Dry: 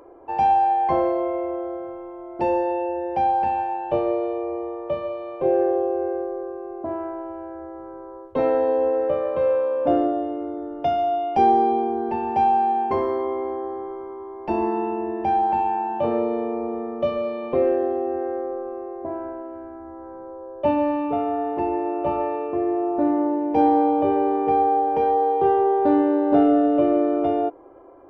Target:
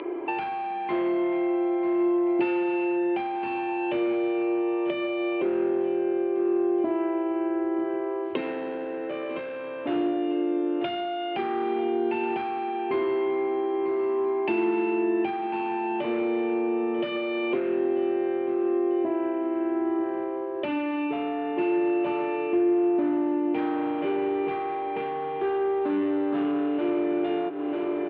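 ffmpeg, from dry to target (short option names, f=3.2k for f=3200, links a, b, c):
-filter_complex "[0:a]aexciter=amount=8.6:drive=8.3:freq=2.2k,aresample=11025,volume=17.5dB,asoftclip=hard,volume=-17.5dB,aresample=44100,asplit=2[a][b];[b]highpass=f=720:p=1,volume=13dB,asoftclip=type=tanh:threshold=-13dB[c];[a][c]amix=inputs=2:normalize=0,lowpass=f=1.6k:p=1,volume=-6dB,lowshelf=f=470:g=10.5,asplit=2[d][e];[e]aecho=0:1:942|1884|2826:0.178|0.0516|0.015[f];[d][f]amix=inputs=2:normalize=0,acompressor=threshold=-29dB:ratio=10,highpass=200,equalizer=f=360:t=q:w=4:g=8,equalizer=f=520:t=q:w=4:g=-10,equalizer=f=760:t=q:w=4:g=-5,equalizer=f=1.5k:t=q:w=4:g=3,lowpass=f=2.9k:w=0.5412,lowpass=f=2.9k:w=1.3066,volume=4.5dB"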